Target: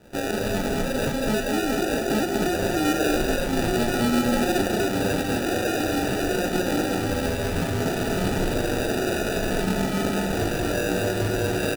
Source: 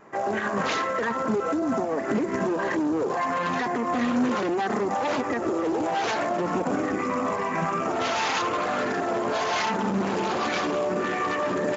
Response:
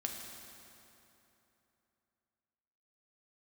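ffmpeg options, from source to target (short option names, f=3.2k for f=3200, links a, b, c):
-filter_complex "[0:a]asettb=1/sr,asplit=3[a][b][c];[a]atrim=end=2.824[d];[b]atrim=start=2.82:end=4.65,asetpts=PTS-STARTPTS,afade=t=in:d=0.004:c=qsin,afade=t=out:st=1.826:d=0.004:c=qsin,asplit=2[e][f];[f]adelay=30,volume=-3.5dB[g];[e][g]amix=inputs=2:normalize=0,atrim=end_sample=80703[h];[c]atrim=start=4.646[i];[d][h]acrossfade=d=0.004:c1=hsin:c2=qsin[j];[j][i]acrossfade=d=0.004:c1=qsin:c2=hsin,acrusher=samples=41:mix=1:aa=0.000001,aecho=1:1:37.9|198.3|239.1:0.355|0.316|0.562"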